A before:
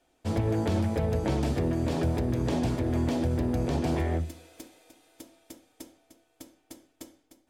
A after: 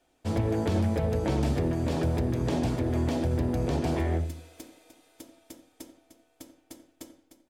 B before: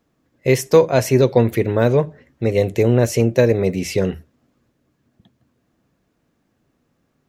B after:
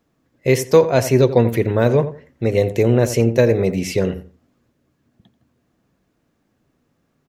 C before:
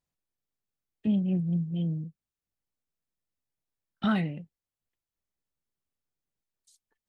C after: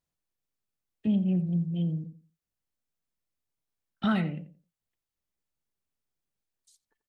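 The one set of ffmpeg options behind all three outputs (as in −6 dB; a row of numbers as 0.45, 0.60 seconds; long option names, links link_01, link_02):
-filter_complex "[0:a]asplit=2[link_01][link_02];[link_02]adelay=87,lowpass=frequency=1500:poles=1,volume=-11.5dB,asplit=2[link_03][link_04];[link_04]adelay=87,lowpass=frequency=1500:poles=1,volume=0.23,asplit=2[link_05][link_06];[link_06]adelay=87,lowpass=frequency=1500:poles=1,volume=0.23[link_07];[link_01][link_03][link_05][link_07]amix=inputs=4:normalize=0"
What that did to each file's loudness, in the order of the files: 0.0, +0.5, +0.5 LU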